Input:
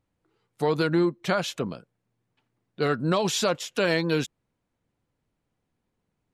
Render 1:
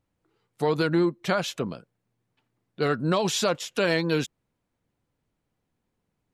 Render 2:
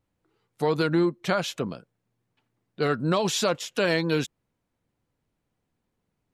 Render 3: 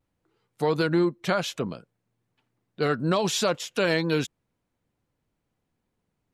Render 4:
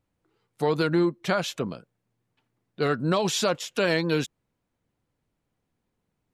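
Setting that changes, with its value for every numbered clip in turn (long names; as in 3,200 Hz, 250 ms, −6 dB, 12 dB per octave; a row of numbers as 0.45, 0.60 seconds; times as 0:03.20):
pitch vibrato, speed: 11, 1.9, 0.44, 5.5 Hertz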